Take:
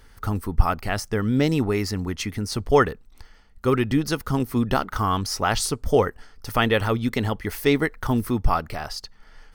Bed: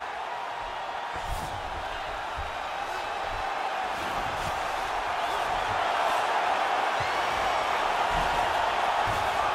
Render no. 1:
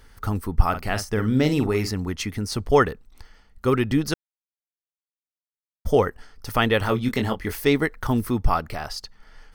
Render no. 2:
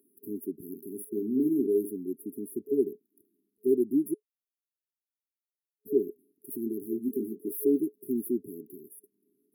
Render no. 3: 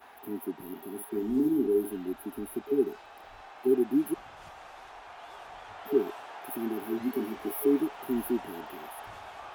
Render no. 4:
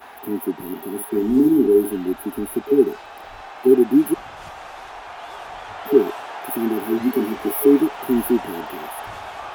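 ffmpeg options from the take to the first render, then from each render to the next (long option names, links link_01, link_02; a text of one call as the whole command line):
ffmpeg -i in.wav -filter_complex "[0:a]asettb=1/sr,asplit=3[link_01][link_02][link_03];[link_01]atrim=end=0.694[link_04];[link_02]atrim=start=0.69:end=1.91,asetpts=PTS-STARTPTS,afade=type=in:duration=0.004:curve=qsin,afade=type=out:start_time=1.216:duration=0.004:curve=qsin,asplit=2[link_05][link_06];[link_06]adelay=47,volume=-9dB[link_07];[link_05][link_07]amix=inputs=2:normalize=0,atrim=end_sample=53802[link_08];[link_03]atrim=start=1.906[link_09];[link_04][link_08]acrossfade=duration=0.004:curve1=hsin:curve2=qsin[link_10];[link_10][link_09]acrossfade=duration=0.004:curve1=qsin:curve2=hsin,asettb=1/sr,asplit=3[link_11][link_12][link_13];[link_11]atrim=end=6.814[link_14];[link_12]atrim=start=6.81:end=7.56,asetpts=PTS-STARTPTS,afade=type=in:duration=0.004:curve=qsin,afade=type=out:start_time=0.746:duration=0.004:curve=qsin,asplit=2[link_15][link_16];[link_16]adelay=23,volume=-6.5dB[link_17];[link_15][link_17]amix=inputs=2:normalize=0,atrim=end_sample=33075[link_18];[link_13]atrim=start=7.556[link_19];[link_14][link_18]acrossfade=duration=0.004:curve1=hsin:curve2=qsin[link_20];[link_20][link_19]acrossfade=duration=0.004:curve1=qsin:curve2=hsin,asplit=3[link_21][link_22][link_23];[link_21]atrim=end=4.14,asetpts=PTS-STARTPTS,afade=type=out:start_time=4.136:duration=0.004:curve=hsin[link_24];[link_22]atrim=start=4.14:end=5.85,asetpts=PTS-STARTPTS,volume=0[link_25];[link_23]atrim=start=5.85,asetpts=PTS-STARTPTS,afade=type=in:duration=0.004:curve=hsin[link_26];[link_24][link_25][link_26]concat=n=3:v=0:a=1" out.wav
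ffmpeg -i in.wav -af "afftfilt=real='re*(1-between(b*sr/4096,420,10000))':imag='im*(1-between(b*sr/4096,420,10000))':win_size=4096:overlap=0.75,highpass=frequency=290:width=0.5412,highpass=frequency=290:width=1.3066" out.wav
ffmpeg -i in.wav -i bed.wav -filter_complex "[1:a]volume=-18dB[link_01];[0:a][link_01]amix=inputs=2:normalize=0" out.wav
ffmpeg -i in.wav -af "volume=11dB" out.wav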